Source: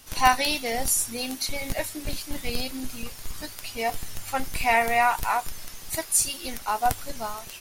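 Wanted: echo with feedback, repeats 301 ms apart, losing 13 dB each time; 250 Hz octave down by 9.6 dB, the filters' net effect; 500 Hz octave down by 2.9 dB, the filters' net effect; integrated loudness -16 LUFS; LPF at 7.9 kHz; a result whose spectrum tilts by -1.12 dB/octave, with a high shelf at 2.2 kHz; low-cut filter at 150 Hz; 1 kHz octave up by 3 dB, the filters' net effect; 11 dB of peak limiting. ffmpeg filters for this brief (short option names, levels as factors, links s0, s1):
-af "highpass=150,lowpass=7900,equalizer=f=250:t=o:g=-8.5,equalizer=f=500:t=o:g=-8.5,equalizer=f=1000:t=o:g=6.5,highshelf=f=2200:g=8,alimiter=limit=0.237:level=0:latency=1,aecho=1:1:301|602|903:0.224|0.0493|0.0108,volume=2.99"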